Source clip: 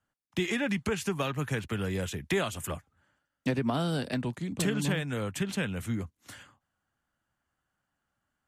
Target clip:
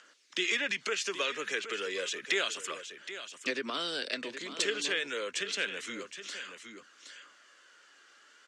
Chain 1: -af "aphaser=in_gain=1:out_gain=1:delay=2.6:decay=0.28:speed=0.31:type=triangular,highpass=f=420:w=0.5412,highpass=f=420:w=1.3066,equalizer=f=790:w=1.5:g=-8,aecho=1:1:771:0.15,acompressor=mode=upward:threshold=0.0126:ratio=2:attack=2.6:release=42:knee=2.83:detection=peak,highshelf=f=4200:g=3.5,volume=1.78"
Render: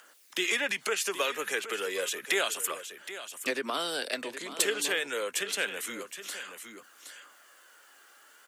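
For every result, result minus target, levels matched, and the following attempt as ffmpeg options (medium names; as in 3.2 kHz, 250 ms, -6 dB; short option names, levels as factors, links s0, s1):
8 kHz band +4.0 dB; 1 kHz band +2.0 dB
-af "aphaser=in_gain=1:out_gain=1:delay=2.6:decay=0.28:speed=0.31:type=triangular,highpass=f=420:w=0.5412,highpass=f=420:w=1.3066,equalizer=f=790:w=1.5:g=-8,aecho=1:1:771:0.15,acompressor=mode=upward:threshold=0.0126:ratio=2:attack=2.6:release=42:knee=2.83:detection=peak,lowpass=f=6500:w=0.5412,lowpass=f=6500:w=1.3066,highshelf=f=4200:g=3.5,volume=1.78"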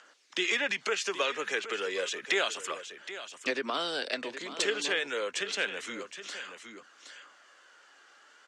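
1 kHz band +3.0 dB
-af "aphaser=in_gain=1:out_gain=1:delay=2.6:decay=0.28:speed=0.31:type=triangular,highpass=f=420:w=0.5412,highpass=f=420:w=1.3066,equalizer=f=790:w=1.5:g=-18,aecho=1:1:771:0.15,acompressor=mode=upward:threshold=0.0126:ratio=2:attack=2.6:release=42:knee=2.83:detection=peak,lowpass=f=6500:w=0.5412,lowpass=f=6500:w=1.3066,highshelf=f=4200:g=3.5,volume=1.78"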